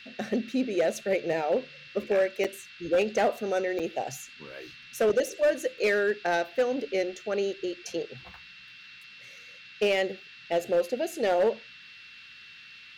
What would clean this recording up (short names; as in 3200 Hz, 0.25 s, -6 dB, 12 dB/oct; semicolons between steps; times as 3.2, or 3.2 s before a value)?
clip repair -18.5 dBFS; notch 2700 Hz, Q 30; interpolate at 2.44/3.79, 6.3 ms; noise print and reduce 23 dB